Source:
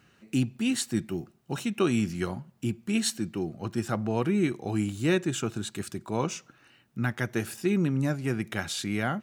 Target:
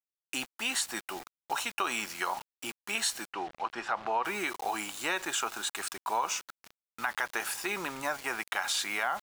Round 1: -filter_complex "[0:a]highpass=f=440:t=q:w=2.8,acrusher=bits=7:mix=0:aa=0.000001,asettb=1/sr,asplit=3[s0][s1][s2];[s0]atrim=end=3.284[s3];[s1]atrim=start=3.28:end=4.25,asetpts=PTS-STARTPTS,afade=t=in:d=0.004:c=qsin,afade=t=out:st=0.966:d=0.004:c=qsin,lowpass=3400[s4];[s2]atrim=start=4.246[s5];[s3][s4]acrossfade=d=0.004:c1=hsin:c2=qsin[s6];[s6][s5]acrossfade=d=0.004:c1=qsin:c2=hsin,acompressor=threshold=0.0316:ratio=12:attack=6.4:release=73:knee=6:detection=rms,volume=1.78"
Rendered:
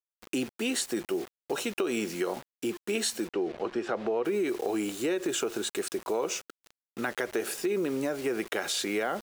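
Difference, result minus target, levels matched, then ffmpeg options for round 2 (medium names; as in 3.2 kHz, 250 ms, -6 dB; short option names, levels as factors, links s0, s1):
500 Hz band +9.5 dB
-filter_complex "[0:a]highpass=f=910:t=q:w=2.8,acrusher=bits=7:mix=0:aa=0.000001,asettb=1/sr,asplit=3[s0][s1][s2];[s0]atrim=end=3.284[s3];[s1]atrim=start=3.28:end=4.25,asetpts=PTS-STARTPTS,afade=t=in:d=0.004:c=qsin,afade=t=out:st=0.966:d=0.004:c=qsin,lowpass=3400[s4];[s2]atrim=start=4.246[s5];[s3][s4]acrossfade=d=0.004:c1=hsin:c2=qsin[s6];[s6][s5]acrossfade=d=0.004:c1=qsin:c2=hsin,acompressor=threshold=0.0316:ratio=12:attack=6.4:release=73:knee=6:detection=rms,volume=1.78"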